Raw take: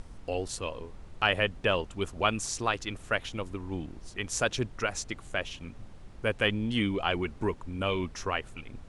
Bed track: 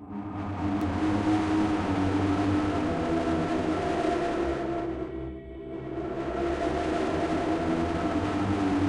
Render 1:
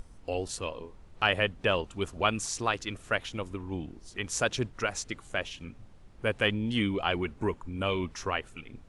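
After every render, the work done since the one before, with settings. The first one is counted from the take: noise print and reduce 6 dB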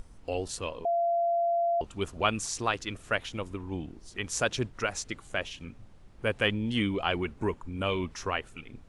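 0.85–1.81 s: bleep 685 Hz -23.5 dBFS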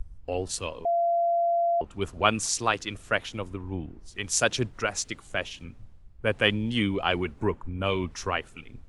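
in parallel at +2 dB: compression 4:1, threshold -39 dBFS, peak gain reduction 15.5 dB; on the sum: three bands expanded up and down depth 70%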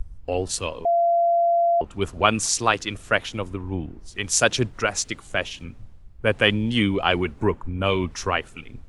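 trim +5 dB; peak limiter -2 dBFS, peak gain reduction 3 dB

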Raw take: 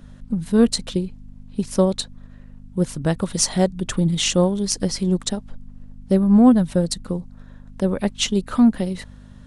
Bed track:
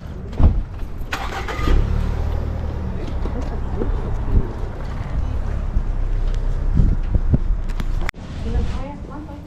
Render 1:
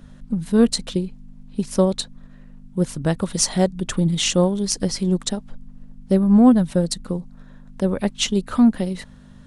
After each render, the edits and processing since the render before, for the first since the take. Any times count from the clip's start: de-hum 50 Hz, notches 2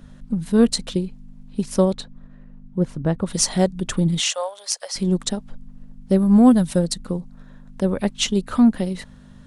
1.93–3.26 s: low-pass 1.9 kHz -> 1.1 kHz 6 dB/octave; 4.20–4.96 s: elliptic high-pass 590 Hz, stop band 50 dB; 6.18–6.78 s: treble shelf 5.8 kHz -> 3.9 kHz +10 dB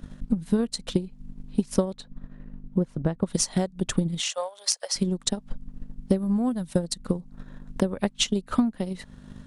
compression 2.5:1, threshold -30 dBFS, peak gain reduction 14.5 dB; transient shaper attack +8 dB, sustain -5 dB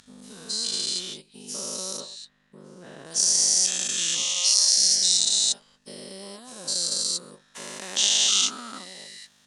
every event in the spectrogram widened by 480 ms; band-pass filter 5.8 kHz, Q 1.1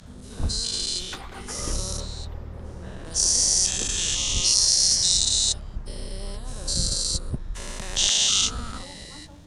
add bed track -13.5 dB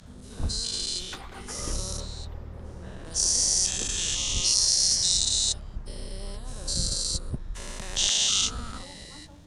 trim -3 dB

